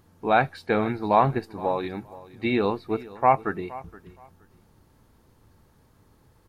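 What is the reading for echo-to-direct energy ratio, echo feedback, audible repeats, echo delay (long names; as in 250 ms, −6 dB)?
−19.0 dB, 21%, 2, 470 ms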